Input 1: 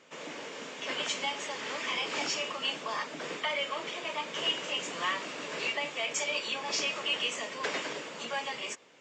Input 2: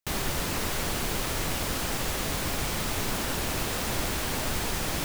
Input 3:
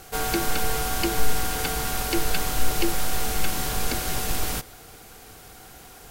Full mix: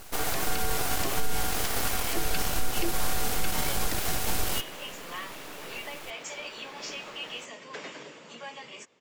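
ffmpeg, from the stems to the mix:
ffmpeg -i stem1.wav -i stem2.wav -i stem3.wav -filter_complex "[0:a]lowshelf=frequency=200:gain=9,adelay=100,volume=-7.5dB[link_01];[1:a]acrossover=split=330 4700:gain=0.0708 1 0.126[link_02][link_03][link_04];[link_02][link_03][link_04]amix=inputs=3:normalize=0,adelay=2400,volume=-13dB[link_05];[2:a]aeval=exprs='abs(val(0))':channel_layout=same,volume=1dB[link_06];[link_01][link_05][link_06]amix=inputs=3:normalize=0,alimiter=limit=-15.5dB:level=0:latency=1:release=120" out.wav

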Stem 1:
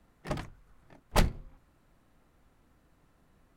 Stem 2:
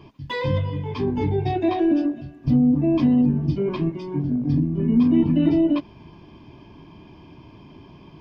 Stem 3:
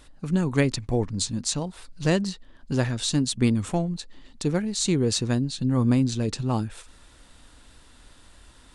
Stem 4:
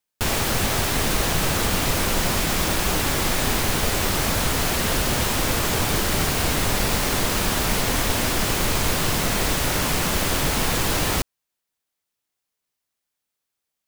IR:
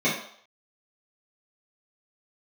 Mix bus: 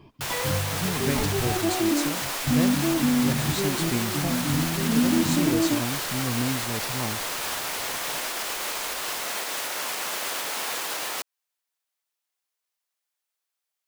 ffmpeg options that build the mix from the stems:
-filter_complex "[0:a]volume=-9dB[link_01];[1:a]volume=-5dB[link_02];[2:a]adelay=500,volume=-7dB[link_03];[3:a]highpass=580,alimiter=limit=-18dB:level=0:latency=1:release=166,volume=-2dB[link_04];[link_01][link_02][link_03][link_04]amix=inputs=4:normalize=0"

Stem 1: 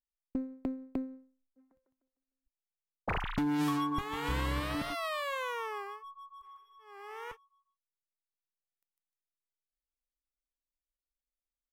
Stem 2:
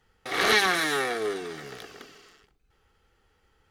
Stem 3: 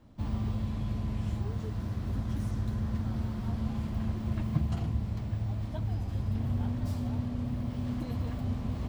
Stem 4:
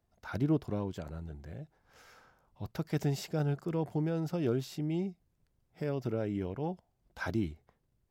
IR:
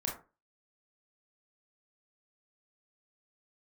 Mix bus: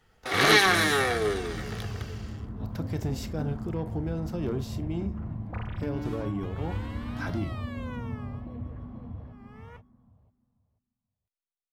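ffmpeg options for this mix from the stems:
-filter_complex "[0:a]lowpass=frequency=3800:poles=1,aecho=1:1:4.1:0.41,adelay=2450,volume=-8dB[link_01];[1:a]volume=0.5dB,asplit=2[link_02][link_03];[link_03]volume=-13.5dB[link_04];[2:a]dynaudnorm=framelen=160:gausssize=11:maxgain=6dB,lowpass=1400,asplit=2[link_05][link_06];[link_06]afreqshift=-1.1[link_07];[link_05][link_07]amix=inputs=2:normalize=1,adelay=450,volume=-7.5dB,asplit=2[link_08][link_09];[link_09]volume=-5dB[link_10];[3:a]asoftclip=type=tanh:threshold=-23.5dB,volume=-2dB,asplit=2[link_11][link_12];[link_12]volume=-8dB[link_13];[4:a]atrim=start_sample=2205[link_14];[link_04][link_13]amix=inputs=2:normalize=0[link_15];[link_15][link_14]afir=irnorm=-1:irlink=0[link_16];[link_10]aecho=0:1:486|972|1458|1944:1|0.23|0.0529|0.0122[link_17];[link_01][link_02][link_08][link_11][link_16][link_17]amix=inputs=6:normalize=0"

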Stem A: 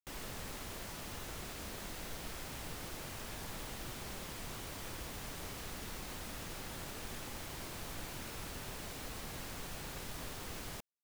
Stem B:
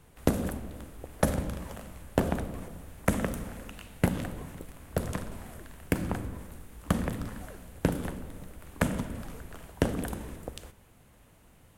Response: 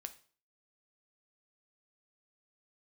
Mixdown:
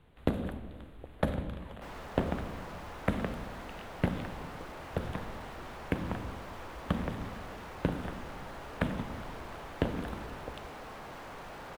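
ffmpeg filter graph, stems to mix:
-filter_complex "[0:a]equalizer=frequency=880:width_type=o:width=3:gain=13.5,asoftclip=type=tanh:threshold=-38dB,adelay=1750,volume=-2.5dB[link_01];[1:a]highshelf=frequency=4500:width_type=q:width=3:gain=-6.5,volume=-4dB[link_02];[link_01][link_02]amix=inputs=2:normalize=0,highshelf=frequency=4000:gain=-10"

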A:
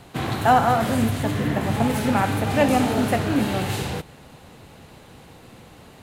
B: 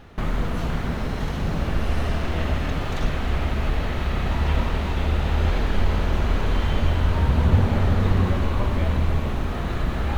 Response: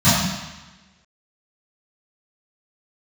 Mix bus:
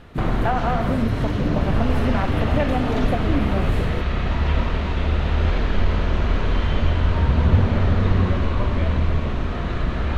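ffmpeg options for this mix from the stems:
-filter_complex "[0:a]afwtdn=0.0562,acompressor=threshold=-21dB:ratio=6,volume=2dB[link_01];[1:a]lowpass=5100,volume=1.5dB[link_02];[link_01][link_02]amix=inputs=2:normalize=0,bandreject=frequency=820:width=12"

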